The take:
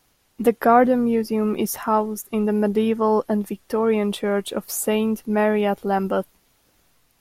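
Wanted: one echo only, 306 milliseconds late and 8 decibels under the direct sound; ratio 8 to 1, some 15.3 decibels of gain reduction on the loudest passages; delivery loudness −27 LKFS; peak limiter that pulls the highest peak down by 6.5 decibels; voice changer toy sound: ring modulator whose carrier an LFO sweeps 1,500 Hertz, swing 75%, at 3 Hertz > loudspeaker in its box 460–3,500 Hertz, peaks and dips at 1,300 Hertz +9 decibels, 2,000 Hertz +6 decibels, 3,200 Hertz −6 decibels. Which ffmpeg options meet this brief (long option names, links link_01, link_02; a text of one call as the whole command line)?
ffmpeg -i in.wav -af "acompressor=threshold=-26dB:ratio=8,alimiter=limit=-21.5dB:level=0:latency=1,aecho=1:1:306:0.398,aeval=exprs='val(0)*sin(2*PI*1500*n/s+1500*0.75/3*sin(2*PI*3*n/s))':channel_layout=same,highpass=460,equalizer=frequency=1300:width_type=q:width=4:gain=9,equalizer=frequency=2000:width_type=q:width=4:gain=6,equalizer=frequency=3200:width_type=q:width=4:gain=-6,lowpass=frequency=3500:width=0.5412,lowpass=frequency=3500:width=1.3066,volume=2.5dB" out.wav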